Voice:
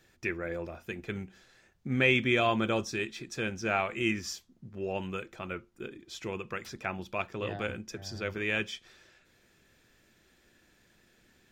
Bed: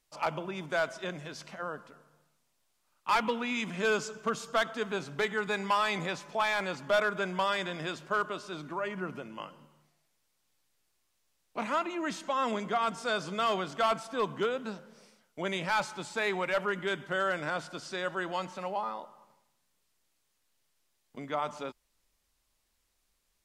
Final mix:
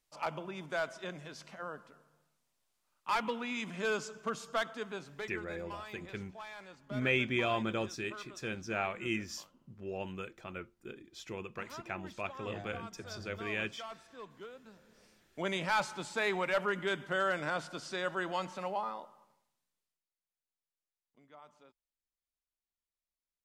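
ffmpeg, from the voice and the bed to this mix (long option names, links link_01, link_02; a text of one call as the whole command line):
ffmpeg -i stem1.wav -i stem2.wav -filter_complex "[0:a]adelay=5050,volume=-5.5dB[link_01];[1:a]volume=11.5dB,afade=type=out:start_time=4.58:duration=0.96:silence=0.223872,afade=type=in:start_time=14.72:duration=0.68:silence=0.149624,afade=type=out:start_time=18.66:duration=1.39:silence=0.0841395[link_02];[link_01][link_02]amix=inputs=2:normalize=0" out.wav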